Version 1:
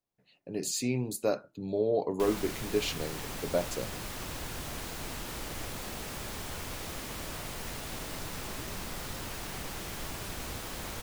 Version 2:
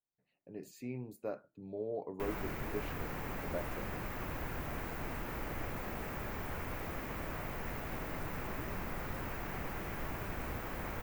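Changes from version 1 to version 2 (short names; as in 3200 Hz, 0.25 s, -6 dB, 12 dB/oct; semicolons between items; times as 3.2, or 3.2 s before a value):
speech -11.0 dB; master: add band shelf 6200 Hz -15 dB 2.3 oct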